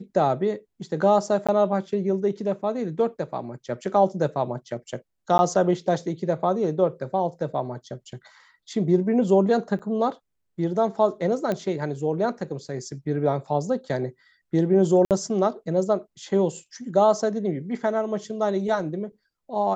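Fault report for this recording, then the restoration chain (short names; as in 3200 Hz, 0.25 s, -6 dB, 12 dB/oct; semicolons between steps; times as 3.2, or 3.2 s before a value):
1.47–1.49 gap 16 ms
5.38–5.39 gap 10 ms
9.79–9.8 gap 6.9 ms
11.52 pop -14 dBFS
15.05–15.11 gap 58 ms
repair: de-click; interpolate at 1.47, 16 ms; interpolate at 5.38, 10 ms; interpolate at 9.79, 6.9 ms; interpolate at 15.05, 58 ms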